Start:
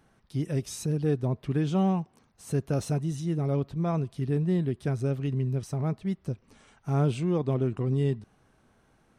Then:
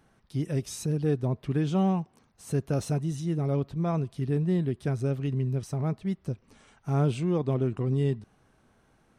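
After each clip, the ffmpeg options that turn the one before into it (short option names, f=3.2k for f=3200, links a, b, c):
-af anull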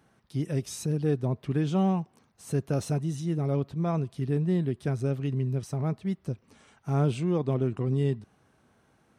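-af "highpass=70"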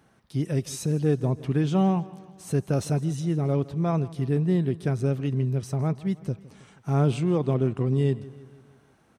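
-af "aecho=1:1:160|320|480|640|800:0.106|0.0593|0.0332|0.0186|0.0104,volume=3dB"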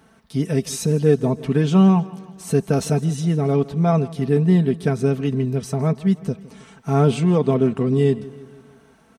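-af "aecho=1:1:4.5:0.59,volume=6dB"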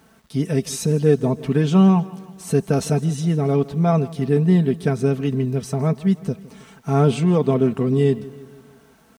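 -af "acrusher=bits=9:mix=0:aa=0.000001"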